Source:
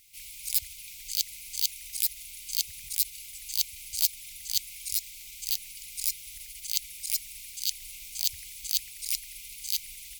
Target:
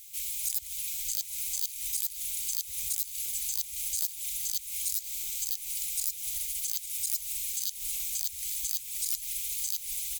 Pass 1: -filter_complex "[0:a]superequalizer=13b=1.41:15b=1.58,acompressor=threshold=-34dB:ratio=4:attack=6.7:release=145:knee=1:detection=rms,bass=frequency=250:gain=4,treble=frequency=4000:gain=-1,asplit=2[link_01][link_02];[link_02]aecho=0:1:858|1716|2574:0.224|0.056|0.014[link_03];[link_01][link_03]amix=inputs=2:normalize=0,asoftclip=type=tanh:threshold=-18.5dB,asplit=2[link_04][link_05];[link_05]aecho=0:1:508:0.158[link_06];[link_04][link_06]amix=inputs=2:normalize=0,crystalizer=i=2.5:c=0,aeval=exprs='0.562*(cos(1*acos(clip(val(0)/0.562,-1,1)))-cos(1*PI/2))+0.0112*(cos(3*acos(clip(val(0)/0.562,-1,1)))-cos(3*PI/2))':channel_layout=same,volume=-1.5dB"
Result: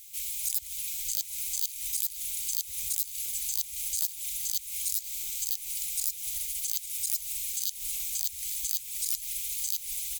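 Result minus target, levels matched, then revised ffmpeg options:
soft clipping: distortion −8 dB
-filter_complex "[0:a]superequalizer=13b=1.41:15b=1.58,acompressor=threshold=-34dB:ratio=4:attack=6.7:release=145:knee=1:detection=rms,bass=frequency=250:gain=4,treble=frequency=4000:gain=-1,asplit=2[link_01][link_02];[link_02]aecho=0:1:858|1716|2574:0.224|0.056|0.014[link_03];[link_01][link_03]amix=inputs=2:normalize=0,asoftclip=type=tanh:threshold=-25dB,asplit=2[link_04][link_05];[link_05]aecho=0:1:508:0.158[link_06];[link_04][link_06]amix=inputs=2:normalize=0,crystalizer=i=2.5:c=0,aeval=exprs='0.562*(cos(1*acos(clip(val(0)/0.562,-1,1)))-cos(1*PI/2))+0.0112*(cos(3*acos(clip(val(0)/0.562,-1,1)))-cos(3*PI/2))':channel_layout=same,volume=-1.5dB"

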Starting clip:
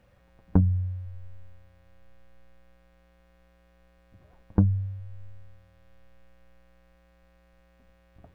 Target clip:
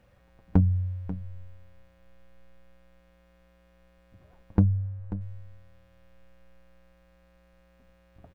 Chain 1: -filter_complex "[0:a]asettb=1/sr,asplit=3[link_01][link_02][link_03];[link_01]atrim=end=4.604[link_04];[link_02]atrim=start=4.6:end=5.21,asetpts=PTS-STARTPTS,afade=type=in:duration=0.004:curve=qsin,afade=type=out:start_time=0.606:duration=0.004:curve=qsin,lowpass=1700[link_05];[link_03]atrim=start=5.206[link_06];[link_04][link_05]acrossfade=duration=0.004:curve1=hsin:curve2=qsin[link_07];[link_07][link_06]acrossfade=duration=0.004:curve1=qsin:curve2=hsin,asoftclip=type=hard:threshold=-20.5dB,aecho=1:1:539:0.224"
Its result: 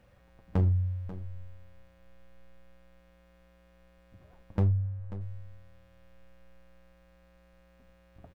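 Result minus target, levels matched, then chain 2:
hard clipping: distortion +22 dB
-filter_complex "[0:a]asettb=1/sr,asplit=3[link_01][link_02][link_03];[link_01]atrim=end=4.604[link_04];[link_02]atrim=start=4.6:end=5.21,asetpts=PTS-STARTPTS,afade=type=in:duration=0.004:curve=qsin,afade=type=out:start_time=0.606:duration=0.004:curve=qsin,lowpass=1700[link_05];[link_03]atrim=start=5.206[link_06];[link_04][link_05]acrossfade=duration=0.004:curve1=hsin:curve2=qsin[link_07];[link_07][link_06]acrossfade=duration=0.004:curve1=qsin:curve2=hsin,asoftclip=type=hard:threshold=-9.5dB,aecho=1:1:539:0.224"

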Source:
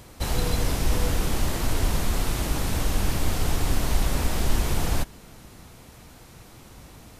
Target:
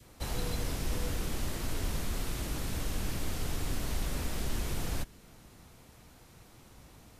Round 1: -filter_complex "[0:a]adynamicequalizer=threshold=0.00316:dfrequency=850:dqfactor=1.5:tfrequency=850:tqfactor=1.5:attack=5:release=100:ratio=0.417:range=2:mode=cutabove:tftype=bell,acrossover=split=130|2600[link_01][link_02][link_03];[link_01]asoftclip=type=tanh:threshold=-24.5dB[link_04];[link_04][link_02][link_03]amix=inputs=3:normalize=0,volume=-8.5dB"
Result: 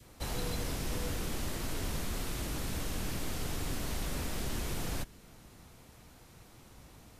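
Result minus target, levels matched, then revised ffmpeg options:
soft clipping: distortion +7 dB
-filter_complex "[0:a]adynamicequalizer=threshold=0.00316:dfrequency=850:dqfactor=1.5:tfrequency=850:tqfactor=1.5:attack=5:release=100:ratio=0.417:range=2:mode=cutabove:tftype=bell,acrossover=split=130|2600[link_01][link_02][link_03];[link_01]asoftclip=type=tanh:threshold=-17dB[link_04];[link_04][link_02][link_03]amix=inputs=3:normalize=0,volume=-8.5dB"

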